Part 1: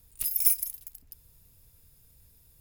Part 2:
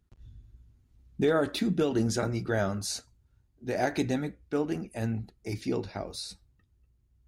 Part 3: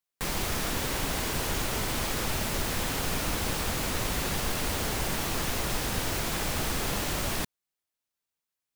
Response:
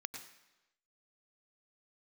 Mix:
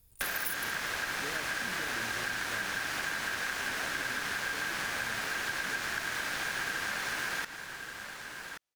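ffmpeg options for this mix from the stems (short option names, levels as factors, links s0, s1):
-filter_complex "[0:a]volume=0.596[s0];[1:a]volume=0.2[s1];[2:a]highshelf=f=11000:g=-11,aeval=exprs='val(0)*sin(2*PI*1600*n/s)':c=same,volume=1.41,asplit=3[s2][s3][s4];[s3]volume=0.562[s5];[s4]volume=0.224[s6];[3:a]atrim=start_sample=2205[s7];[s5][s7]afir=irnorm=-1:irlink=0[s8];[s6]aecho=0:1:1128:1[s9];[s0][s1][s2][s8][s9]amix=inputs=5:normalize=0,acompressor=threshold=0.0282:ratio=6"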